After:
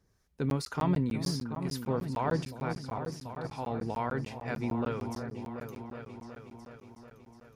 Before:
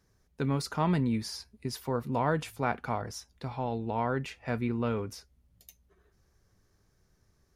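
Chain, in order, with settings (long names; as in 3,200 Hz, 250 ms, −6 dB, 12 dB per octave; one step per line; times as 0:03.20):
0:01.22–0:01.70: leveller curve on the samples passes 1
0:02.45–0:03.51: output level in coarse steps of 17 dB
two-band tremolo in antiphase 2.1 Hz, depth 50%, crossover 830 Hz
echo whose low-pass opens from repeat to repeat 368 ms, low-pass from 400 Hz, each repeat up 2 octaves, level −6 dB
regular buffer underruns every 0.15 s, samples 512, zero, from 0:00.50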